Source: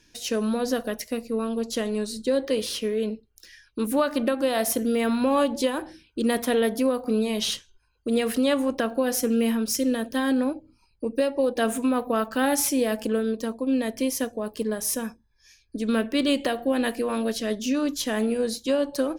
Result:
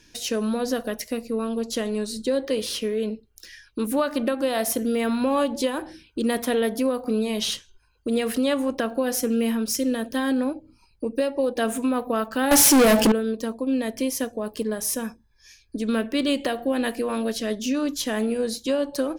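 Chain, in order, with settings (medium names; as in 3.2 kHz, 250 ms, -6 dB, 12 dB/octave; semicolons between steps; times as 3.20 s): in parallel at +1 dB: compression, threshold -35 dBFS, peak gain reduction 16.5 dB; 12.51–13.12 s: on the sum: waveshaping leveller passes 5; trim -2 dB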